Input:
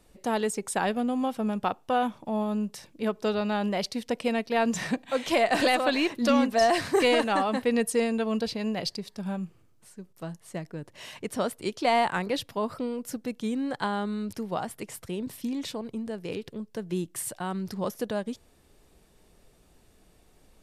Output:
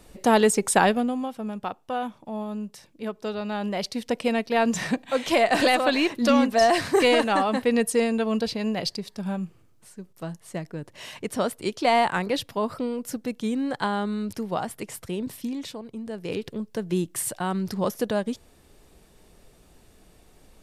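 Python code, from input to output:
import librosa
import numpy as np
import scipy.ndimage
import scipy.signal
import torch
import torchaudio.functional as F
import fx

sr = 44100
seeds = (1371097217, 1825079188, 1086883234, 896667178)

y = fx.gain(x, sr, db=fx.line((0.8, 9.0), (1.29, -3.5), (3.33, -3.5), (4.09, 3.0), (15.28, 3.0), (15.87, -3.5), (16.39, 5.0)))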